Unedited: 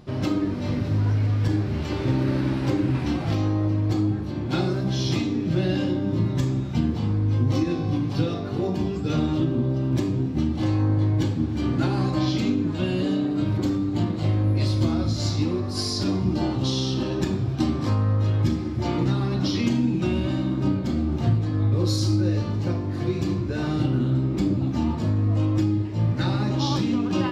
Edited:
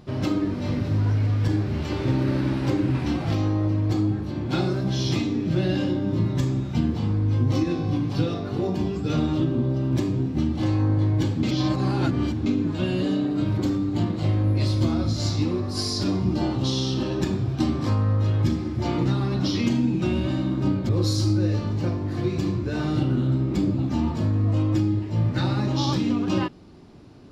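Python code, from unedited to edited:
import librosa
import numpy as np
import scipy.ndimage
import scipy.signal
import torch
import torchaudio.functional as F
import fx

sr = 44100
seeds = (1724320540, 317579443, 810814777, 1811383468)

y = fx.edit(x, sr, fx.reverse_span(start_s=11.43, length_s=1.03),
    fx.cut(start_s=20.89, length_s=0.83), tone=tone)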